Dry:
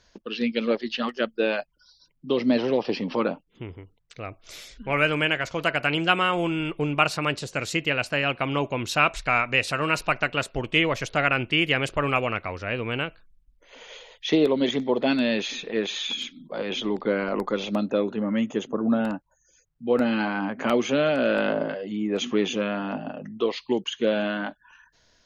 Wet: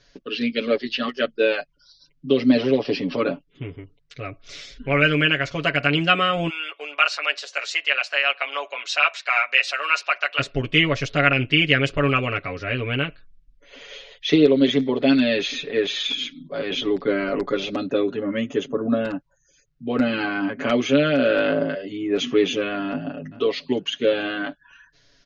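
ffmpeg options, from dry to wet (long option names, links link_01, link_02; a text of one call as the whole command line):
ffmpeg -i in.wav -filter_complex "[0:a]asplit=3[link_01][link_02][link_03];[link_01]afade=type=out:start_time=6.48:duration=0.02[link_04];[link_02]highpass=frequency=660:width=0.5412,highpass=frequency=660:width=1.3066,afade=type=in:start_time=6.48:duration=0.02,afade=type=out:start_time=10.38:duration=0.02[link_05];[link_03]afade=type=in:start_time=10.38:duration=0.02[link_06];[link_04][link_05][link_06]amix=inputs=3:normalize=0,asplit=2[link_07][link_08];[link_08]afade=type=in:start_time=22.88:duration=0.01,afade=type=out:start_time=23.31:duration=0.01,aecho=0:1:430|860:0.125893|0.0314731[link_09];[link_07][link_09]amix=inputs=2:normalize=0,lowpass=frequency=6000:width=0.5412,lowpass=frequency=6000:width=1.3066,equalizer=frequency=890:width_type=o:width=0.6:gain=-10,aecho=1:1:7.1:0.91,volume=2dB" out.wav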